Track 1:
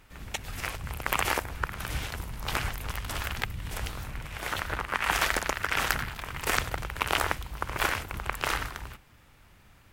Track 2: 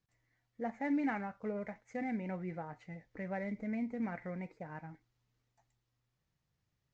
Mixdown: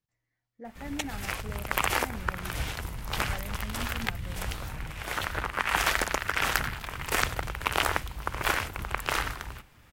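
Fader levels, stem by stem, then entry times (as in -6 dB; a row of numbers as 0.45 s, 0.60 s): +0.5 dB, -5.0 dB; 0.65 s, 0.00 s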